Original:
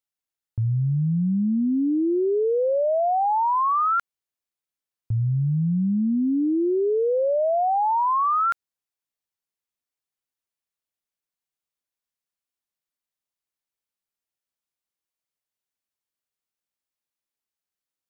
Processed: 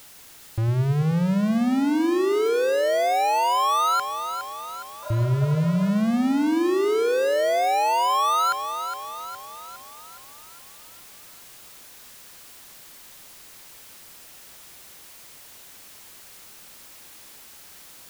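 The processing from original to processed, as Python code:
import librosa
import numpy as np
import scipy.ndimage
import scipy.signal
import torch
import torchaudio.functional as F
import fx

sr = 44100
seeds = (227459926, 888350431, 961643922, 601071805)

y = fx.power_curve(x, sr, exponent=0.35)
y = fx.echo_split(y, sr, split_hz=400.0, low_ms=103, high_ms=413, feedback_pct=52, wet_db=-9)
y = fx.spec_repair(y, sr, seeds[0], start_s=5.06, length_s=0.81, low_hz=480.0, high_hz=1700.0, source='after')
y = y * librosa.db_to_amplitude(-2.0)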